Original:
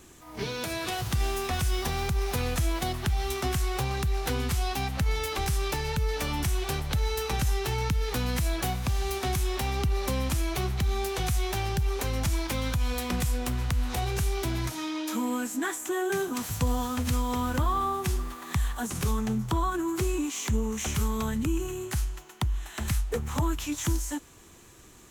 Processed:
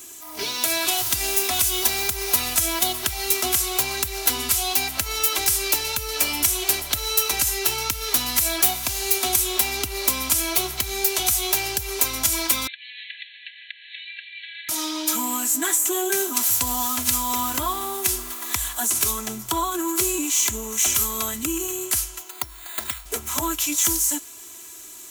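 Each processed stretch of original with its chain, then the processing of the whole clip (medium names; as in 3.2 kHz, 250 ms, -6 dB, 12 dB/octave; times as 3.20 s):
12.67–14.69 s: brick-wall FIR band-pass 1.6–4.3 kHz + distance through air 310 m
22.30–23.06 s: bass shelf 270 Hz -8.5 dB + upward compressor, threshold -39 dBFS + careless resampling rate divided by 8×, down filtered, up hold
whole clip: RIAA curve recording; band-stop 1.8 kHz, Q 12; comb 3 ms, depth 66%; trim +3 dB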